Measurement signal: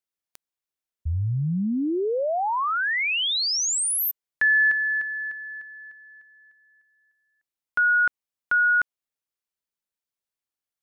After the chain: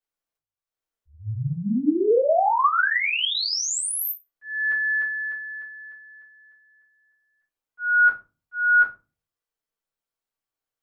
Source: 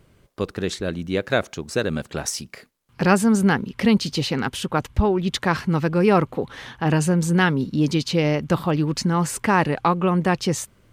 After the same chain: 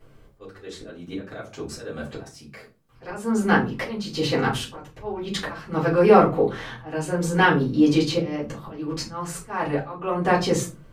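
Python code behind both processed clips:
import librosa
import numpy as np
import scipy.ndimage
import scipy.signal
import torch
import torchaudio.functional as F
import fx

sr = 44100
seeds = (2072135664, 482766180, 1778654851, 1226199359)

y = fx.hum_notches(x, sr, base_hz=50, count=3)
y = fx.dynamic_eq(y, sr, hz=160.0, q=0.99, threshold_db=-28.0, ratio=4.0, max_db=-3)
y = fx.auto_swell(y, sr, attack_ms=465.0)
y = fx.peak_eq(y, sr, hz=630.0, db=4.5, octaves=2.9)
y = fx.room_shoebox(y, sr, seeds[0], volume_m3=120.0, walls='furnished', distance_m=3.7)
y = y * librosa.db_to_amplitude(-9.0)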